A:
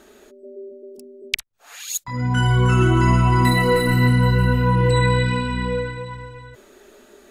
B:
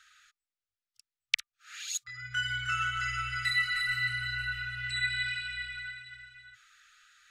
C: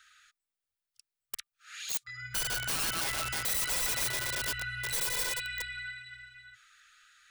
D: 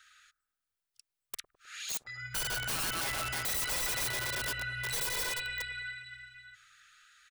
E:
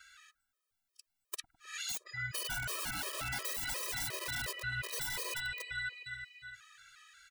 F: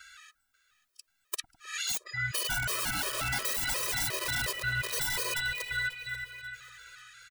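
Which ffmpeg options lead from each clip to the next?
ffmpeg -i in.wav -filter_complex "[0:a]afftfilt=real='re*(1-between(b*sr/4096,120,1200))':imag='im*(1-between(b*sr/4096,120,1200))':win_size=4096:overlap=0.75,acrossover=split=320 7200:gain=0.1 1 0.126[link_01][link_02][link_03];[link_01][link_02][link_03]amix=inputs=3:normalize=0,volume=-4dB" out.wav
ffmpeg -i in.wav -af "aeval=exprs='(mod(26.6*val(0)+1,2)-1)/26.6':channel_layout=same,aexciter=amount=1.6:drive=2.5:freq=8900" out.wav
ffmpeg -i in.wav -filter_complex "[0:a]acrossover=split=1100[link_01][link_02];[link_01]aecho=1:1:104|208|312|416|520|624:0.251|0.146|0.0845|0.049|0.0284|0.0165[link_03];[link_02]asoftclip=type=hard:threshold=-29.5dB[link_04];[link_03][link_04]amix=inputs=2:normalize=0" out.wav
ffmpeg -i in.wav -af "acompressor=threshold=-38dB:ratio=6,afftfilt=real='re*gt(sin(2*PI*2.8*pts/sr)*(1-2*mod(floor(b*sr/1024/330),2)),0)':imag='im*gt(sin(2*PI*2.8*pts/sr)*(1-2*mod(floor(b*sr/1024/330),2)),0)':win_size=1024:overlap=0.75,volume=5.5dB" out.wav
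ffmpeg -i in.wav -af "aecho=1:1:538|1076|1614:0.126|0.0504|0.0201,volume=6.5dB" out.wav

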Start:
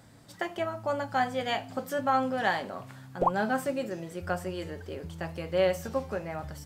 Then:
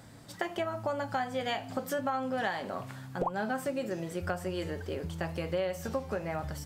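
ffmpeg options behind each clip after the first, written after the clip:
ffmpeg -i in.wav -af "acompressor=threshold=-32dB:ratio=6,volume=3dB" out.wav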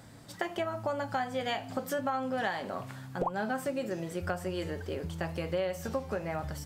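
ffmpeg -i in.wav -af anull out.wav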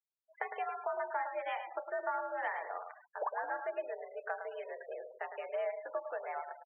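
ffmpeg -i in.wav -af "highpass=frequency=410:width_type=q:width=0.5412,highpass=frequency=410:width_type=q:width=1.307,lowpass=frequency=2600:width_type=q:width=0.5176,lowpass=frequency=2600:width_type=q:width=0.7071,lowpass=frequency=2600:width_type=q:width=1.932,afreqshift=78,aecho=1:1:108|216|324|432:0.398|0.135|0.046|0.0156,afftfilt=real='re*gte(hypot(re,im),0.0112)':imag='im*gte(hypot(re,im),0.0112)':win_size=1024:overlap=0.75,volume=-4dB" out.wav

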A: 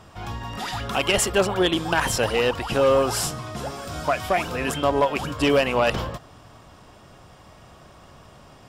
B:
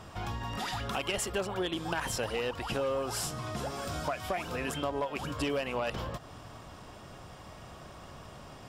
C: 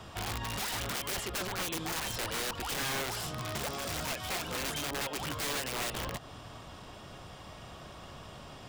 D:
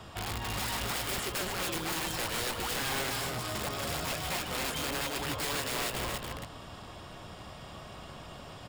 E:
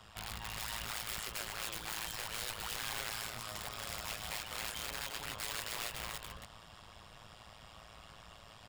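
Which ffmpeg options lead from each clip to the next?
ffmpeg -i in.wav -af "acompressor=threshold=-34dB:ratio=3" out.wav
ffmpeg -i in.wav -filter_complex "[0:a]equalizer=frequency=3400:width_type=o:width=0.83:gain=5,acrossover=split=160|930|3900[link_01][link_02][link_03][link_04];[link_04]alimiter=level_in=10dB:limit=-24dB:level=0:latency=1:release=416,volume=-10dB[link_05];[link_01][link_02][link_03][link_05]amix=inputs=4:normalize=0,aeval=exprs='(mod(28.2*val(0)+1,2)-1)/28.2':channel_layout=same" out.wav
ffmpeg -i in.wav -af "bandreject=frequency=6000:width=14,aecho=1:1:154.5|277:0.316|0.631" out.wav
ffmpeg -i in.wav -af "equalizer=frequency=260:width=0.65:gain=-13.5,tremolo=f=110:d=0.857,volume=-2dB" out.wav

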